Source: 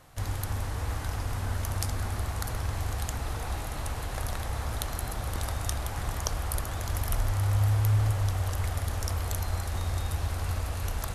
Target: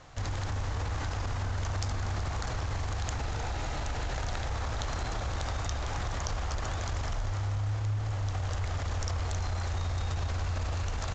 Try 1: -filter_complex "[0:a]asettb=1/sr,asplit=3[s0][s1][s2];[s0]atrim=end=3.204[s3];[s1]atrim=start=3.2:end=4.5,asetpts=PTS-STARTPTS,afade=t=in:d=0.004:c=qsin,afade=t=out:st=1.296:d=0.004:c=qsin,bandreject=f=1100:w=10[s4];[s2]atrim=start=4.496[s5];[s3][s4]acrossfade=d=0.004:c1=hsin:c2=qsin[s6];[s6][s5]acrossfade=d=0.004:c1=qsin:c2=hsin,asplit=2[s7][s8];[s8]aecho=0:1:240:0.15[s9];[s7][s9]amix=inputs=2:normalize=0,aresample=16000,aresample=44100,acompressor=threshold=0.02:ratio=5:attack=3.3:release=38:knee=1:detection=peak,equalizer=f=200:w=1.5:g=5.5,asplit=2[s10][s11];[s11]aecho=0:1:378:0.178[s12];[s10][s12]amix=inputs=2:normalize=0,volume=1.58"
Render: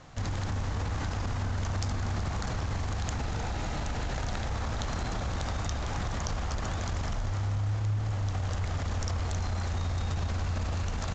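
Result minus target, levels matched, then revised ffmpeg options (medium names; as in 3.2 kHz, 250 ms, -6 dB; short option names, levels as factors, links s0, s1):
250 Hz band +4.5 dB
-filter_complex "[0:a]asettb=1/sr,asplit=3[s0][s1][s2];[s0]atrim=end=3.204[s3];[s1]atrim=start=3.2:end=4.5,asetpts=PTS-STARTPTS,afade=t=in:d=0.004:c=qsin,afade=t=out:st=1.296:d=0.004:c=qsin,bandreject=f=1100:w=10[s4];[s2]atrim=start=4.496[s5];[s3][s4]acrossfade=d=0.004:c1=hsin:c2=qsin[s6];[s6][s5]acrossfade=d=0.004:c1=qsin:c2=hsin,asplit=2[s7][s8];[s8]aecho=0:1:240:0.15[s9];[s7][s9]amix=inputs=2:normalize=0,aresample=16000,aresample=44100,acompressor=threshold=0.02:ratio=5:attack=3.3:release=38:knee=1:detection=peak,equalizer=f=200:w=1.5:g=-3,asplit=2[s10][s11];[s11]aecho=0:1:378:0.178[s12];[s10][s12]amix=inputs=2:normalize=0,volume=1.58"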